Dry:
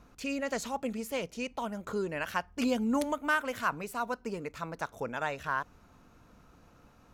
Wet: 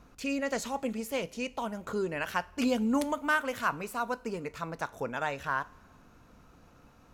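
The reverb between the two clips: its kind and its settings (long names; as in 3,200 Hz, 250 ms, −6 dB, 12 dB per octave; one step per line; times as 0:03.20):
coupled-rooms reverb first 0.31 s, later 1.8 s, from −18 dB, DRR 14.5 dB
level +1 dB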